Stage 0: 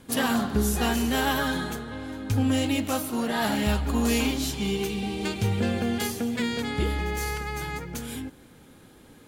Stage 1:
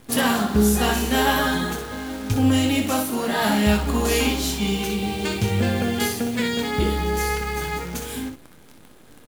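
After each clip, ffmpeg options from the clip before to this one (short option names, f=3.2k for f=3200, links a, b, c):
-filter_complex "[0:a]acrusher=bits=8:dc=4:mix=0:aa=0.000001,asplit=2[a][b];[b]aecho=0:1:24|62:0.355|0.447[c];[a][c]amix=inputs=2:normalize=0,volume=4dB"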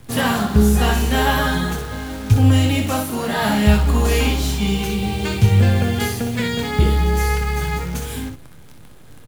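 -filter_complex "[0:a]lowshelf=f=180:t=q:w=1.5:g=7,acrossover=split=140|890|3100[a][b][c][d];[d]asoftclip=type=tanh:threshold=-28.5dB[e];[a][b][c][e]amix=inputs=4:normalize=0,volume=2dB"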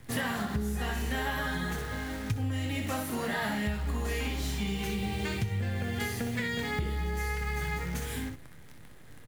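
-af "equalizer=f=1.9k:t=o:w=0.38:g=8.5,acompressor=threshold=-20dB:ratio=10,volume=-8dB"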